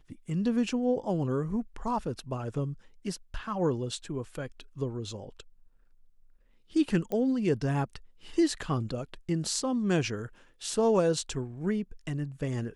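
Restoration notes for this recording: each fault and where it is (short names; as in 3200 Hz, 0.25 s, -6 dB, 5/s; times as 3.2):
7.12 pop -21 dBFS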